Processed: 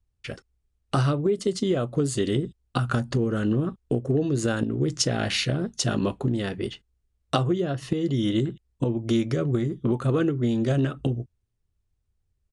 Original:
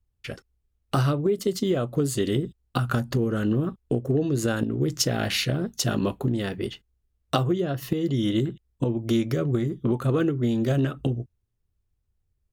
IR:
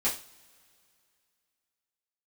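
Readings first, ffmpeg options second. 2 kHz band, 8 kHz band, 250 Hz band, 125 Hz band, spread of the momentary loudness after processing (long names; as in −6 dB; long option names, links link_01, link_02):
0.0 dB, 0.0 dB, 0.0 dB, 0.0 dB, 7 LU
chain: -af "aresample=22050,aresample=44100"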